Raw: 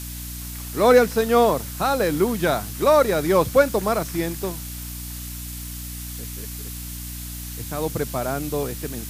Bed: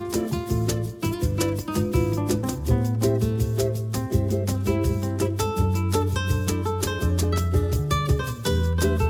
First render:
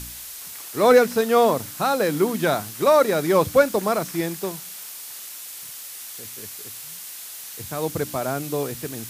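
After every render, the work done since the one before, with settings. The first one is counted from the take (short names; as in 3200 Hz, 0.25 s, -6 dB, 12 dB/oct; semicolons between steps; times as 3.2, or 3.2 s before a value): de-hum 60 Hz, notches 5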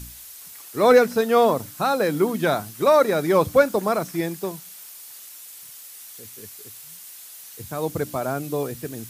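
denoiser 7 dB, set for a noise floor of -38 dBFS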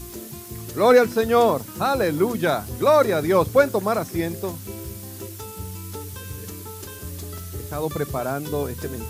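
add bed -12.5 dB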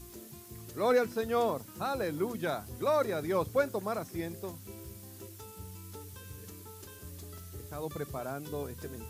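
gain -12 dB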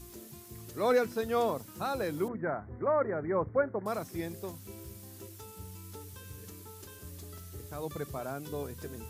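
2.28–3.86 steep low-pass 2100 Hz 96 dB/oct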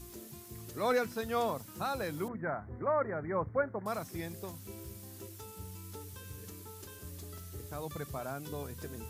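dynamic EQ 380 Hz, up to -6 dB, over -43 dBFS, Q 1.1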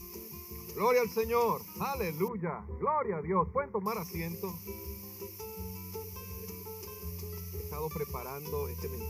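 ripple EQ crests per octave 0.81, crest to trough 17 dB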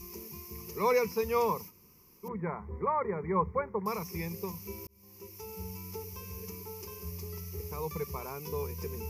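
1.69–2.26 room tone, crossfade 0.06 s; 4.87–5.55 fade in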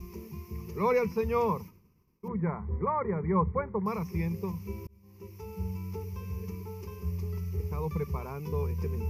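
tone controls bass +9 dB, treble -12 dB; expander -49 dBFS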